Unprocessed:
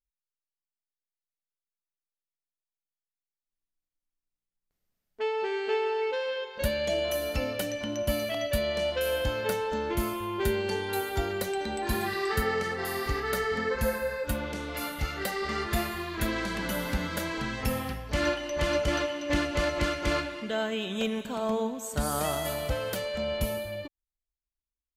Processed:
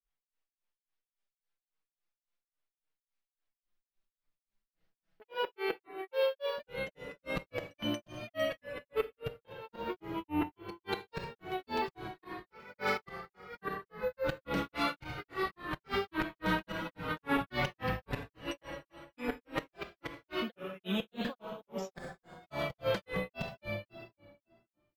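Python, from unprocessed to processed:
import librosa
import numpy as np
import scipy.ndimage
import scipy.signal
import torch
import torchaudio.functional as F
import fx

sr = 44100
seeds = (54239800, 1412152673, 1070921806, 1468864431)

p1 = fx.dynamic_eq(x, sr, hz=110.0, q=7.8, threshold_db=-53.0, ratio=4.0, max_db=6)
p2 = fx.gate_flip(p1, sr, shuts_db=-20.0, range_db=-32)
p3 = (np.kron(scipy.signal.resample_poly(p2, 1, 3), np.eye(3)[0]) * 3)[:len(p2)]
p4 = scipy.signal.sosfilt(scipy.signal.butter(2, 3400.0, 'lowpass', fs=sr, output='sos'), p3)
p5 = p4 + fx.echo_single(p4, sr, ms=78, db=-22.0, dry=0)
p6 = fx.rev_plate(p5, sr, seeds[0], rt60_s=1.9, hf_ratio=0.8, predelay_ms=0, drr_db=9.5)
p7 = fx.over_compress(p6, sr, threshold_db=-36.0, ratio=-1.0)
p8 = p6 + (p7 * librosa.db_to_amplitude(-1.0))
p9 = fx.low_shelf(p8, sr, hz=390.0, db=-3.0)
p10 = p9 + 0.62 * np.pad(p9, (int(6.0 * sr / 1000.0), 0))[:len(p9)]
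p11 = fx.granulator(p10, sr, seeds[1], grain_ms=245.0, per_s=3.6, spray_ms=18.0, spread_st=3)
y = fx.transformer_sat(p11, sr, knee_hz=240.0)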